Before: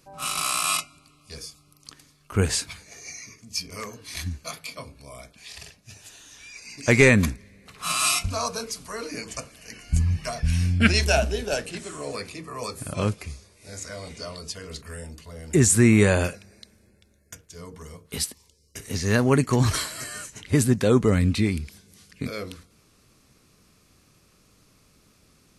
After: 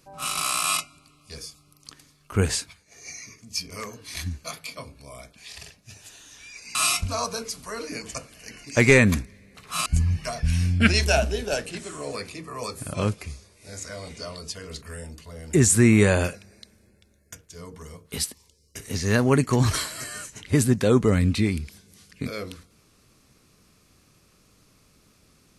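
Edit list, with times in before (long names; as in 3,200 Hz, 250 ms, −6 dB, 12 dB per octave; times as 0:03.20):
0:02.51–0:03.10: duck −13 dB, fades 0.24 s
0:06.75–0:07.97: move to 0:09.86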